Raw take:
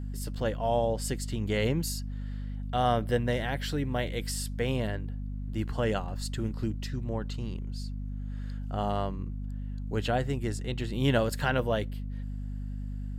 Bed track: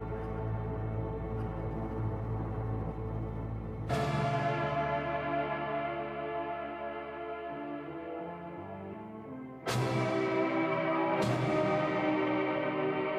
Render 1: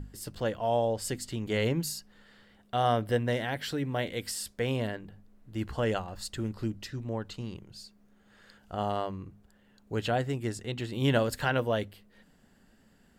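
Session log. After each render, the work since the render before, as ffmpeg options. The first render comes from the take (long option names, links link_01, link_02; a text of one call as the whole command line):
ffmpeg -i in.wav -af "bandreject=frequency=50:width_type=h:width=6,bandreject=frequency=100:width_type=h:width=6,bandreject=frequency=150:width_type=h:width=6,bandreject=frequency=200:width_type=h:width=6,bandreject=frequency=250:width_type=h:width=6" out.wav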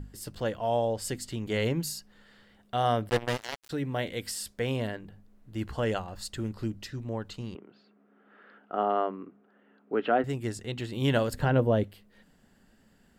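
ffmpeg -i in.wav -filter_complex "[0:a]asplit=3[link_01][link_02][link_03];[link_01]afade=type=out:start_time=3.08:duration=0.02[link_04];[link_02]acrusher=bits=3:mix=0:aa=0.5,afade=type=in:start_time=3.08:duration=0.02,afade=type=out:start_time=3.69:duration=0.02[link_05];[link_03]afade=type=in:start_time=3.69:duration=0.02[link_06];[link_04][link_05][link_06]amix=inputs=3:normalize=0,asettb=1/sr,asplit=3[link_07][link_08][link_09];[link_07]atrim=end=7.554[link_10];[link_08]atrim=start=7.55:end=10.24,asetpts=PTS-STARTPTS,afade=type=in:duration=0.004:curve=qsin,afade=type=out:start_time=2.686:duration=0.004:curve=qsin,highpass=frequency=210:width=0.5412,highpass=frequency=210:width=1.3066,equalizer=frequency=270:width_type=q:width=4:gain=7,equalizer=frequency=410:width_type=q:width=4:gain=7,equalizer=frequency=700:width_type=q:width=4:gain=5,equalizer=frequency=1300:width_type=q:width=4:gain=9,lowpass=frequency=2700:width=0.5412,lowpass=frequency=2700:width=1.3066[link_11];[link_09]atrim=start=10.236[link_12];[link_10][link_11]acrossfade=duration=0.004:curve1=hsin:curve2=qsin[link_13];[link_13][link_12]acrossfade=duration=0.004:curve1=qsin:curve2=hsin,asettb=1/sr,asplit=3[link_14][link_15][link_16];[link_14]atrim=end=11.334[link_17];[link_15]atrim=start=11.33:end=11.84,asetpts=PTS-STARTPTS,afade=type=in:duration=0.004:curve=qsin,afade=type=out:start_time=0.506:duration=0.004:curve=qsin,tiltshelf=frequency=910:gain=8[link_18];[link_16]atrim=start=11.836[link_19];[link_17][link_18]acrossfade=duration=0.004:curve1=hsin:curve2=qsin[link_20];[link_20][link_19]acrossfade=duration=0.004:curve1=qsin:curve2=hsin" out.wav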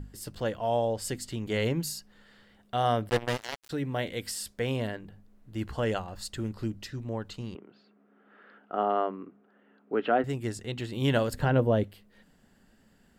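ffmpeg -i in.wav -af anull out.wav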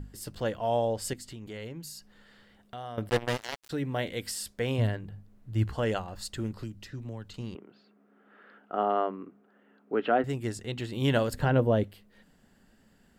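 ffmpeg -i in.wav -filter_complex "[0:a]asettb=1/sr,asplit=3[link_01][link_02][link_03];[link_01]atrim=end=1.134[link_04];[link_02]atrim=start=1.13:end=2.98,asetpts=PTS-STARTPTS,afade=type=in:duration=0.004:curve=qsin,afade=type=out:start_time=1.846:duration=0.004:curve=qsin,acompressor=threshold=-43dB:ratio=2.5:attack=3.2:release=140:knee=1:detection=peak[link_05];[link_03]atrim=start=2.976[link_06];[link_04][link_05]acrossfade=duration=0.004:curve1=hsin:curve2=qsin[link_07];[link_07][link_06]acrossfade=duration=0.004:curve1=qsin:curve2=hsin,asettb=1/sr,asplit=3[link_08][link_09][link_10];[link_08]atrim=end=4.784[link_11];[link_09]atrim=start=4.78:end=5.7,asetpts=PTS-STARTPTS,afade=type=in:duration=0.004:curve=qsin,afade=type=out:start_time=0.916:duration=0.004:curve=qsin,equalizer=frequency=110:width=2:gain=11.5[link_12];[link_10]atrim=start=5.696[link_13];[link_11][link_12]acrossfade=duration=0.004:curve1=hsin:curve2=qsin[link_14];[link_14][link_13]acrossfade=duration=0.004:curve1=qsin:curve2=hsin,asettb=1/sr,asplit=3[link_15][link_16][link_17];[link_15]atrim=end=6.534[link_18];[link_16]atrim=start=6.53:end=7.34,asetpts=PTS-STARTPTS,afade=type=in:duration=0.004:curve=qsin,afade=type=out:start_time=0.806:duration=0.004:curve=qsin,acrossover=split=180|2300[link_19][link_20][link_21];[link_19]acompressor=threshold=-38dB:ratio=4[link_22];[link_20]acompressor=threshold=-43dB:ratio=4[link_23];[link_21]acompressor=threshold=-49dB:ratio=4[link_24];[link_22][link_23][link_24]amix=inputs=3:normalize=0[link_25];[link_17]atrim=start=7.336[link_26];[link_18][link_25]acrossfade=duration=0.004:curve1=hsin:curve2=qsin[link_27];[link_27][link_26]acrossfade=duration=0.004:curve1=qsin:curve2=hsin" out.wav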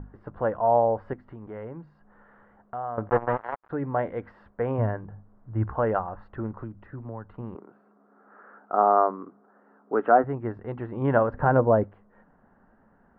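ffmpeg -i in.wav -af "lowpass=frequency=1500:width=0.5412,lowpass=frequency=1500:width=1.3066,equalizer=frequency=1000:width=0.75:gain=10.5" out.wav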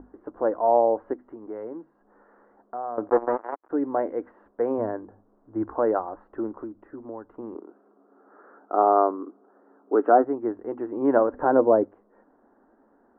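ffmpeg -i in.wav -af "lowpass=1300,lowshelf=frequency=210:width_type=q:width=3:gain=-12.5" out.wav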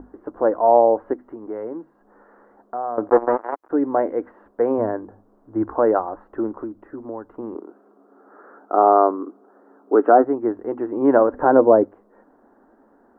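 ffmpeg -i in.wav -af "volume=5.5dB,alimiter=limit=-2dB:level=0:latency=1" out.wav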